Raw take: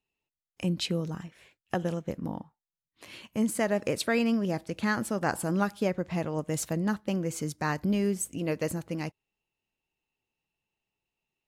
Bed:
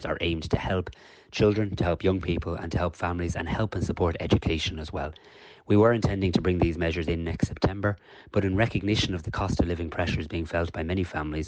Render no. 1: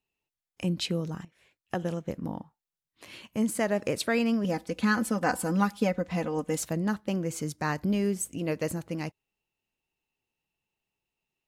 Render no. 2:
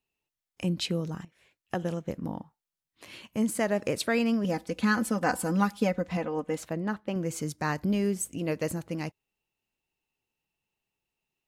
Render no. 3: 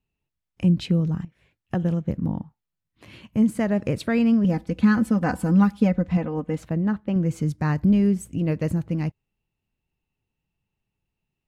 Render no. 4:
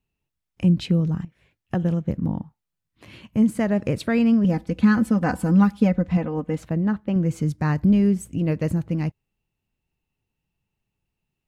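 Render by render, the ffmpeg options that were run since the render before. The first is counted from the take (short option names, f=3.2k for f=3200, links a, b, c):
-filter_complex "[0:a]asettb=1/sr,asplit=3[a][b][c];[a]atrim=end=4.444[d];[b]atrim=start=4.44:end=6.58,asetpts=PTS-STARTPTS,afade=t=in:d=0.004:c=qsin,afade=t=out:st=2.136:d=0.004:c=qsin,aecho=1:1:4:0.76,atrim=end_sample=94374[e];[c]atrim=start=6.576[f];[d][e]acrossfade=d=0.004:c1=hsin:c2=qsin[g];[g][f]acrossfade=d=0.004:c1=qsin:c2=hsin,asplit=2[h][i];[h]atrim=end=1.25,asetpts=PTS-STARTPTS,afade=t=out:st=1.246:d=0.004:c=hsin:silence=0.199526[j];[i]atrim=start=1.25,asetpts=PTS-STARTPTS,afade=t=in:d=0.88:c=qsin:silence=0.199526[k];[j][k]concat=n=2:v=0:a=1"
-filter_complex "[0:a]asettb=1/sr,asplit=3[a][b][c];[a]atrim=end=6.174[d];[b]atrim=start=6.17:end=7.16,asetpts=PTS-STARTPTS,afade=t=in:d=0.004:c=qsin,afade=t=out:st=0.986:d=0.004:c=qsin,bass=f=250:g=-5,treble=f=4k:g=-11[e];[c]atrim=start=7.156[f];[d][e]acrossfade=d=0.004:c1=hsin:c2=qsin[g];[g][f]acrossfade=d=0.004:c1=qsin:c2=hsin"
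-af "bass=f=250:g=14,treble=f=4k:g=-8"
-af "volume=1dB"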